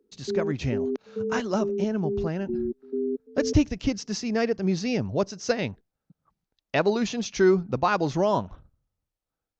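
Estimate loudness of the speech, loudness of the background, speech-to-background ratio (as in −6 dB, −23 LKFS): −27.0 LKFS, −31.5 LKFS, 4.5 dB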